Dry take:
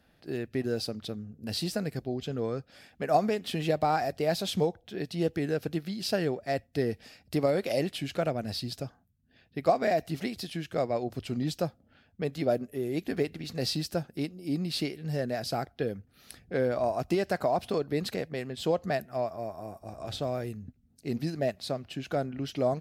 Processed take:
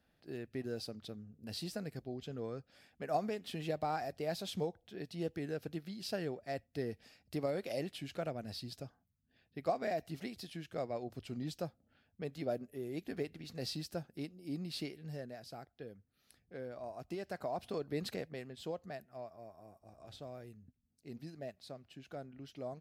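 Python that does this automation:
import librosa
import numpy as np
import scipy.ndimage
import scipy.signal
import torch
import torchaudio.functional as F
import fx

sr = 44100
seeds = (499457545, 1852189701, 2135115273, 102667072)

y = fx.gain(x, sr, db=fx.line((15.0, -10.0), (15.41, -17.5), (16.8, -17.5), (18.09, -7.0), (18.9, -16.0)))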